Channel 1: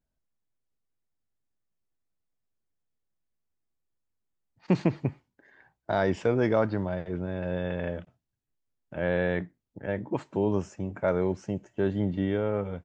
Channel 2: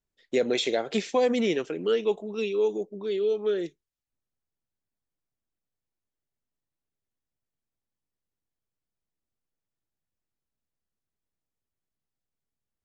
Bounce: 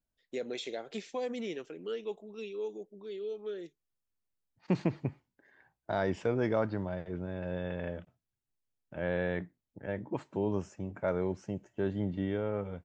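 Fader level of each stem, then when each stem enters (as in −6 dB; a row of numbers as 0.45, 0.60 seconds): −5.5, −12.5 decibels; 0.00, 0.00 seconds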